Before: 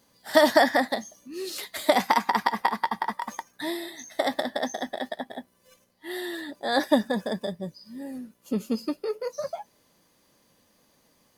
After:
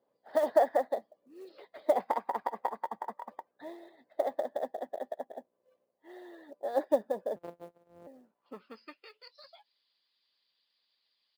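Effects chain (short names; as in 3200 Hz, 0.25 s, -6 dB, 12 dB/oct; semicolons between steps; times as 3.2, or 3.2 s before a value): 7.36–8.07 sample sorter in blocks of 256 samples; downsampling 11025 Hz; band-pass sweep 540 Hz -> 3900 Hz, 8.1–9.29; short-mantissa float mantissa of 4-bit; harmonic-percussive split harmonic -8 dB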